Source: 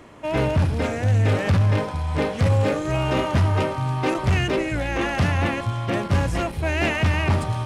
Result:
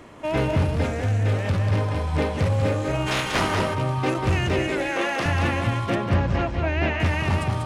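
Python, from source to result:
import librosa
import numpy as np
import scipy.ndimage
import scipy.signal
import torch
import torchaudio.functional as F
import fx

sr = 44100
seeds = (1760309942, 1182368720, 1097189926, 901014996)

p1 = fx.spec_clip(x, sr, under_db=25, at=(3.06, 3.54), fade=0.02)
p2 = fx.highpass(p1, sr, hz=320.0, slope=12, at=(4.71, 5.26))
p3 = fx.air_absorb(p2, sr, metres=180.0, at=(5.95, 7.0))
p4 = p3 + fx.echo_single(p3, sr, ms=192, db=-5.0, dry=0)
p5 = fx.rider(p4, sr, range_db=4, speed_s=0.5)
y = F.gain(torch.from_numpy(p5), -2.5).numpy()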